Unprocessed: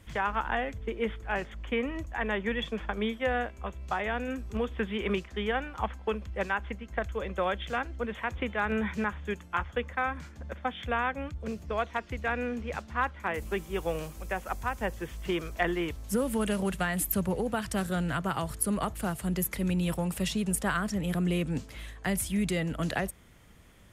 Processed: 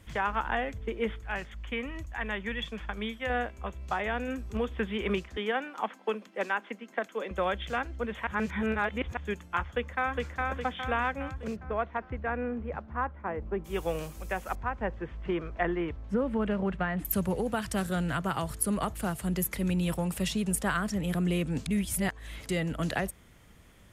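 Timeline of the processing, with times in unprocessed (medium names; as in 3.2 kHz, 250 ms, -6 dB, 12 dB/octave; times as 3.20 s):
1.19–3.30 s: peaking EQ 430 Hz -7 dB 2.5 oct
5.37–7.31 s: steep high-pass 210 Hz
8.27–9.17 s: reverse
9.70–10.32 s: echo throw 410 ms, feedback 50%, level -2 dB
11.55–13.64 s: low-pass 1.9 kHz -> 1 kHz
14.55–17.05 s: low-pass 1.9 kHz
21.66–22.49 s: reverse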